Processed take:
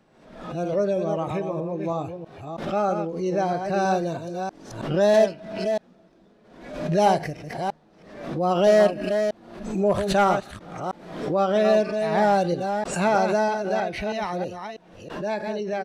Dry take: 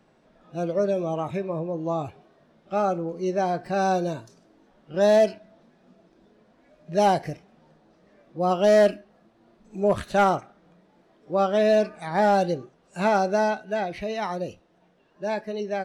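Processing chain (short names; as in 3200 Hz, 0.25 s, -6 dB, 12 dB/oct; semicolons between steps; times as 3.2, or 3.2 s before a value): reverse delay 0.321 s, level -6.5 dB; downsampling 32000 Hz; backwards sustainer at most 69 dB/s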